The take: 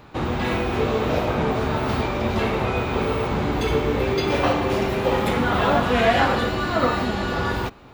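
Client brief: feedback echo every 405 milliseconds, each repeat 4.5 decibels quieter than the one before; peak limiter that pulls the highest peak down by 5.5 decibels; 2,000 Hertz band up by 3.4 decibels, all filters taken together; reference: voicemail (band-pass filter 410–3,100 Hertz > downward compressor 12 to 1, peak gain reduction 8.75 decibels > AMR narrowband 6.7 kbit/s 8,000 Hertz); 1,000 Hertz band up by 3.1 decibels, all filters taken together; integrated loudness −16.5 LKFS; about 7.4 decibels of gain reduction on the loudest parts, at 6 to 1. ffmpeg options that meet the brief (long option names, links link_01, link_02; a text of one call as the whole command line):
ffmpeg -i in.wav -af "equalizer=frequency=1000:width_type=o:gain=3.5,equalizer=frequency=2000:width_type=o:gain=4,acompressor=threshold=-19dB:ratio=6,alimiter=limit=-15.5dB:level=0:latency=1,highpass=410,lowpass=3100,aecho=1:1:405|810|1215|1620|2025|2430|2835|3240|3645:0.596|0.357|0.214|0.129|0.0772|0.0463|0.0278|0.0167|0.01,acompressor=threshold=-28dB:ratio=12,volume=18.5dB" -ar 8000 -c:a libopencore_amrnb -b:a 6700 out.amr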